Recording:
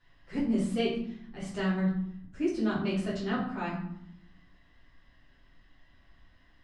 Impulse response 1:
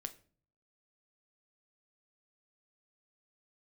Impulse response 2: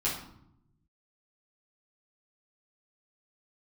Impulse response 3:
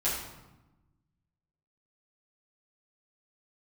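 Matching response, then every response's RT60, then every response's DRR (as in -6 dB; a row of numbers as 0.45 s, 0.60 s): 2; 0.45 s, 0.75 s, 1.0 s; 8.0 dB, -8.0 dB, -10.0 dB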